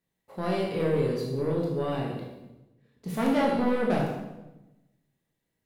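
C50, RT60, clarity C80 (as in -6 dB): 2.5 dB, 1.0 s, 5.0 dB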